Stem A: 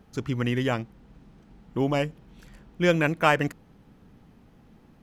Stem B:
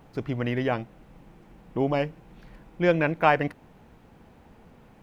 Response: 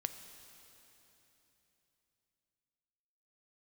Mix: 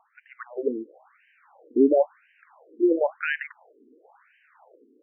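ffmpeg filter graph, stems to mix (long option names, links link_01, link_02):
-filter_complex "[0:a]volume=-11dB[link_01];[1:a]volume=-2.5dB[link_02];[link_01][link_02]amix=inputs=2:normalize=0,dynaudnorm=framelen=250:gausssize=5:maxgain=9.5dB,afftfilt=real='re*between(b*sr/1024,320*pow(2200/320,0.5+0.5*sin(2*PI*0.97*pts/sr))/1.41,320*pow(2200/320,0.5+0.5*sin(2*PI*0.97*pts/sr))*1.41)':imag='im*between(b*sr/1024,320*pow(2200/320,0.5+0.5*sin(2*PI*0.97*pts/sr))/1.41,320*pow(2200/320,0.5+0.5*sin(2*PI*0.97*pts/sr))*1.41)':win_size=1024:overlap=0.75"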